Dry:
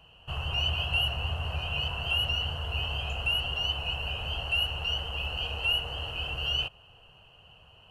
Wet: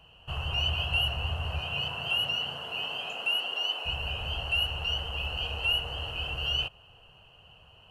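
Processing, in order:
0:01.60–0:03.85: high-pass filter 89 Hz → 320 Hz 24 dB per octave

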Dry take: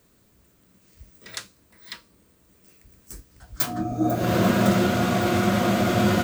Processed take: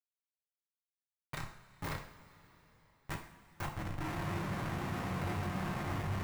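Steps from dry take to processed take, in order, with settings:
downward compressor 2 to 1, threshold −46 dBFS, peak gain reduction 17 dB
high-shelf EQ 7,900 Hz +11.5 dB
notch filter 3,300 Hz, Q 7.5
output level in coarse steps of 20 dB
mains-hum notches 60/120/180/240/300/360/420/480/540/600 Hz
flutter between parallel walls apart 5.5 metres, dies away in 0.31 s
comparator with hysteresis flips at −36.5 dBFS
octave-band graphic EQ 125/1,000/2,000 Hz +9/+9/+7 dB
coupled-rooms reverb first 0.51 s, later 4 s, from −18 dB, DRR 1.5 dB
level −1 dB

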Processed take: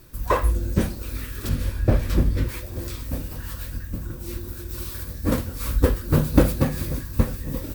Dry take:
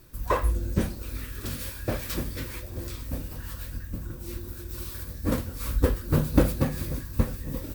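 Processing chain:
0:01.49–0:02.49: spectral tilt −2.5 dB per octave
level +4 dB

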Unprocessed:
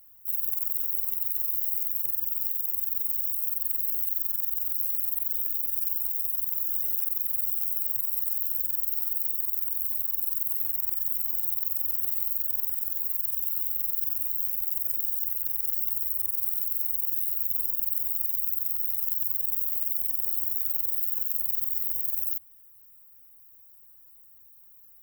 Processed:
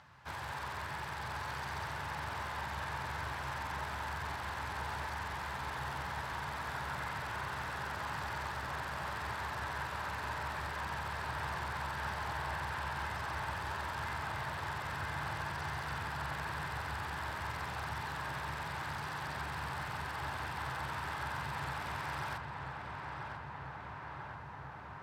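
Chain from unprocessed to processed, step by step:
loudspeaker in its box 120–4,600 Hz, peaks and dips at 130 Hz +3 dB, 890 Hz +6 dB, 1,600 Hz +5 dB
feedback echo with a low-pass in the loop 991 ms, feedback 83%, low-pass 2,700 Hz, level −5 dB
level +18 dB

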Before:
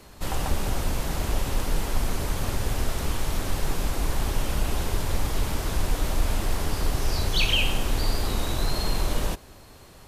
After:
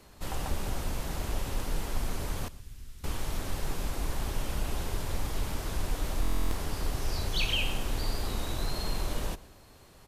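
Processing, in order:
0:02.48–0:03.04: guitar amp tone stack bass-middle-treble 6-0-2
slap from a distant wall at 21 metres, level −20 dB
buffer that repeats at 0:06.21, samples 1,024, times 12
level −6.5 dB

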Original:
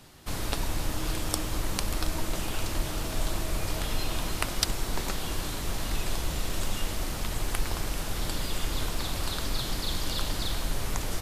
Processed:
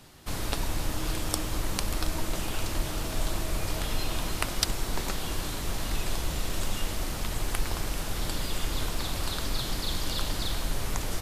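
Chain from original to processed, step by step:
0:06.39–0:08.76: surface crackle 99 per second −52 dBFS

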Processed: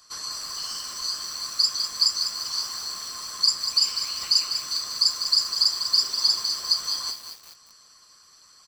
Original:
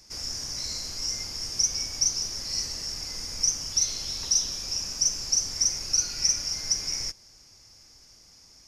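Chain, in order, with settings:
neighbouring bands swapped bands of 1,000 Hz
harmonic and percussive parts rebalanced harmonic −11 dB
ambience of single reflections 13 ms −11 dB, 35 ms −13 dB
feedback echo at a low word length 198 ms, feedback 55%, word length 7 bits, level −8 dB
level +4 dB

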